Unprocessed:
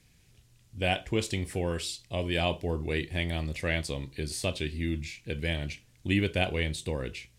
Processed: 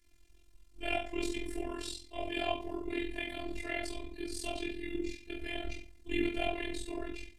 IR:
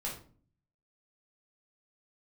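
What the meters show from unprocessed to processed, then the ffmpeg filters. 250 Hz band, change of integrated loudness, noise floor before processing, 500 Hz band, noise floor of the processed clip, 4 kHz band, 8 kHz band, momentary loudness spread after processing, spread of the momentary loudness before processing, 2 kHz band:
-4.5 dB, -6.5 dB, -62 dBFS, -6.0 dB, -61 dBFS, -7.0 dB, -7.5 dB, 7 LU, 7 LU, -6.0 dB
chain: -filter_complex "[1:a]atrim=start_sample=2205[s0];[0:a][s0]afir=irnorm=-1:irlink=0,tremolo=f=43:d=0.889,afftfilt=real='hypot(re,im)*cos(PI*b)':imag='0':win_size=512:overlap=0.75"

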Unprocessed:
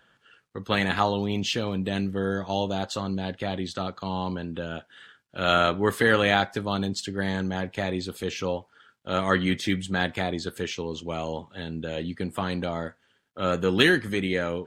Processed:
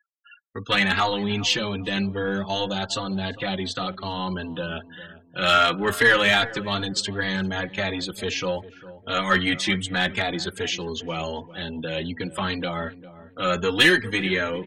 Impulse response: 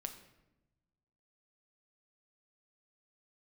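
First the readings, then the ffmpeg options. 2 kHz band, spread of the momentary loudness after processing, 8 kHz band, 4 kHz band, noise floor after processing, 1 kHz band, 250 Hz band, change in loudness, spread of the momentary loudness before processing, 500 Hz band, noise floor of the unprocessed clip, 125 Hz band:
+5.5 dB, 15 LU, +6.0 dB, +6.5 dB, -51 dBFS, +2.5 dB, 0.0 dB, +3.0 dB, 13 LU, 0.0 dB, -67 dBFS, -0.5 dB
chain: -filter_complex "[0:a]afftfilt=real='re*gte(hypot(re,im),0.00562)':imag='im*gte(hypot(re,im),0.00562)':win_size=1024:overlap=0.75,aeval=exprs='0.596*(cos(1*acos(clip(val(0)/0.596,-1,1)))-cos(1*PI/2))+0.00668*(cos(2*acos(clip(val(0)/0.596,-1,1)))-cos(2*PI/2))+0.00668*(cos(4*acos(clip(val(0)/0.596,-1,1)))-cos(4*PI/2))':c=same,acrossover=split=1400[s0][s1];[s0]asoftclip=type=tanh:threshold=0.106[s2];[s1]acontrast=83[s3];[s2][s3]amix=inputs=2:normalize=0,highshelf=f=4800:g=-3.5,asplit=2[s4][s5];[s5]asoftclip=type=hard:threshold=0.237,volume=0.708[s6];[s4][s6]amix=inputs=2:normalize=0,asplit=2[s7][s8];[s8]adelay=401,lowpass=f=800:p=1,volume=0.188,asplit=2[s9][s10];[s10]adelay=401,lowpass=f=800:p=1,volume=0.38,asplit=2[s11][s12];[s12]adelay=401,lowpass=f=800:p=1,volume=0.38,asplit=2[s13][s14];[s14]adelay=401,lowpass=f=800:p=1,volume=0.38[s15];[s7][s9][s11][s13][s15]amix=inputs=5:normalize=0,asplit=2[s16][s17];[s17]adelay=3.6,afreqshift=2.6[s18];[s16][s18]amix=inputs=2:normalize=1"

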